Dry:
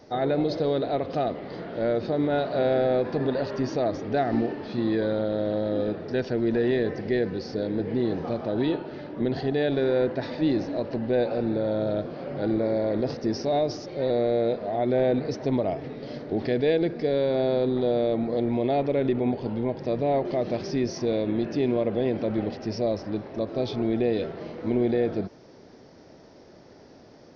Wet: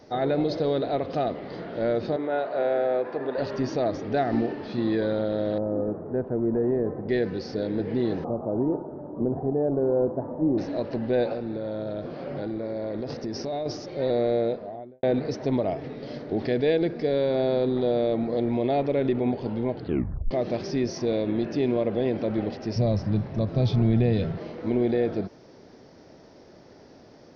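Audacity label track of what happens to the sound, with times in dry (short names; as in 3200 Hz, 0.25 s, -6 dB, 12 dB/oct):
2.160000	3.380000	three-band isolator lows -16 dB, under 340 Hz, highs -13 dB, over 2600 Hz
5.580000	7.090000	Chebyshev low-pass 1100 Hz, order 3
8.240000	10.580000	steep low-pass 1100 Hz
11.330000	13.660000	compressor, threshold -27 dBFS
14.310000	15.030000	studio fade out
19.730000	19.730000	tape stop 0.58 s
22.760000	24.380000	resonant low shelf 220 Hz +11.5 dB, Q 1.5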